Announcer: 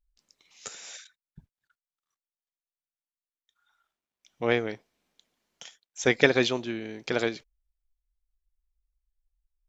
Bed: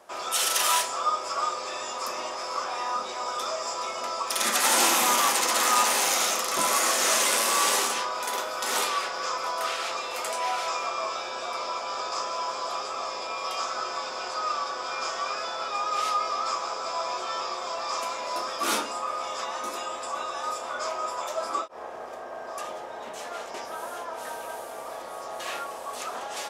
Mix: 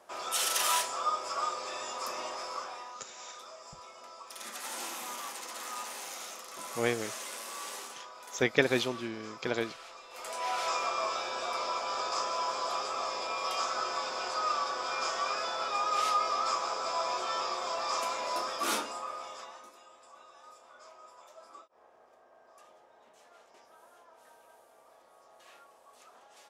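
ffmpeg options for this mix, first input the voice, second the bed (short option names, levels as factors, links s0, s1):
-filter_complex "[0:a]adelay=2350,volume=0.562[s0];[1:a]volume=3.55,afade=t=out:st=2.37:d=0.57:silence=0.223872,afade=t=in:st=10.09:d=0.62:silence=0.158489,afade=t=out:st=18.25:d=1.47:silence=0.0944061[s1];[s0][s1]amix=inputs=2:normalize=0"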